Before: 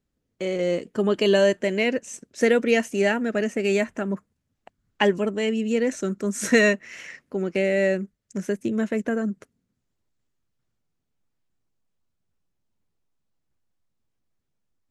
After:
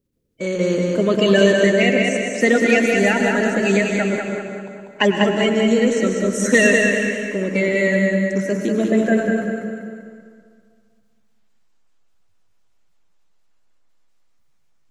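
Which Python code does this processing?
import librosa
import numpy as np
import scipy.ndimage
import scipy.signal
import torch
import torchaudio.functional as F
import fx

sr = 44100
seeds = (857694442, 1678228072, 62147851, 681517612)

p1 = fx.spec_quant(x, sr, step_db=30)
p2 = p1 + fx.echo_feedback(p1, sr, ms=195, feedback_pct=45, wet_db=-4.0, dry=0)
p3 = fx.rev_plate(p2, sr, seeds[0], rt60_s=1.9, hf_ratio=0.65, predelay_ms=85, drr_db=4.5)
y = F.gain(torch.from_numpy(p3), 4.0).numpy()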